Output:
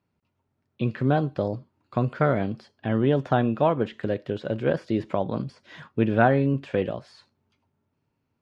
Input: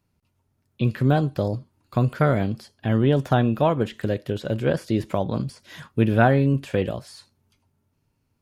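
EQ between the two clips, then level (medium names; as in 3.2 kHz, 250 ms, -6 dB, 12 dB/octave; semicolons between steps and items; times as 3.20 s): high-pass 190 Hz 6 dB/octave; low-pass 3.1 kHz 6 dB/octave; distance through air 73 m; 0.0 dB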